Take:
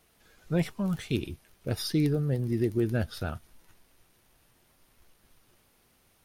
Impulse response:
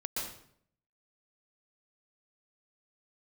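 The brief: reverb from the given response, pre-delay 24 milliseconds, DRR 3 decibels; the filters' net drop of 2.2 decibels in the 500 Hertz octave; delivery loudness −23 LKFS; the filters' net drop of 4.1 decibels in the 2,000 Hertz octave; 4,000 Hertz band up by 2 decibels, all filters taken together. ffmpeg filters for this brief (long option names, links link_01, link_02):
-filter_complex "[0:a]equalizer=frequency=500:width_type=o:gain=-3,equalizer=frequency=2000:width_type=o:gain=-6.5,equalizer=frequency=4000:width_type=o:gain=4,asplit=2[link_01][link_02];[1:a]atrim=start_sample=2205,adelay=24[link_03];[link_02][link_03]afir=irnorm=-1:irlink=0,volume=-6dB[link_04];[link_01][link_04]amix=inputs=2:normalize=0,volume=5.5dB"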